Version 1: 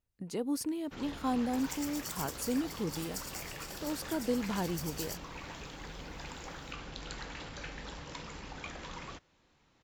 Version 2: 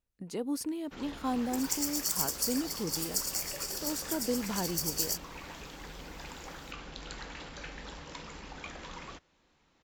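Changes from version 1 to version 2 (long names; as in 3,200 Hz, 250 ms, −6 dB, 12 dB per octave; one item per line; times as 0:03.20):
second sound +10.5 dB
master: add parametric band 110 Hz −7.5 dB 0.58 octaves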